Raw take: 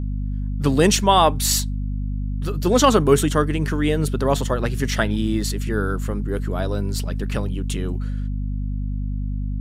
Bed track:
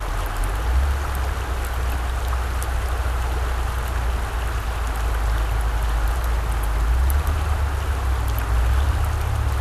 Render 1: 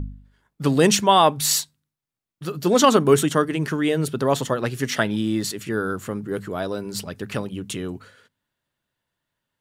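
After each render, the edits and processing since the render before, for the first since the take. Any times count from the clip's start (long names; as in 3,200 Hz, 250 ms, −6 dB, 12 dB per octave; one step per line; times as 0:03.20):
hum removal 50 Hz, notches 5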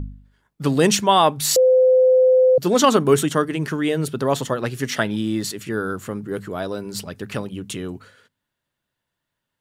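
0:01.56–0:02.58: beep over 513 Hz −10.5 dBFS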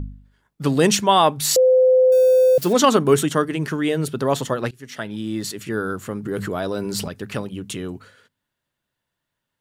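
0:02.12–0:02.73: spike at every zero crossing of −24.5 dBFS
0:04.71–0:05.63: fade in, from −23 dB
0:06.25–0:07.08: envelope flattener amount 70%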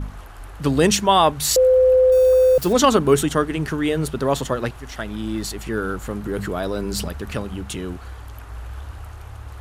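mix in bed track −14.5 dB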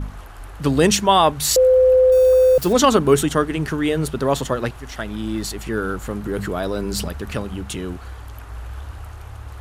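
level +1 dB
brickwall limiter −3 dBFS, peak gain reduction 0.5 dB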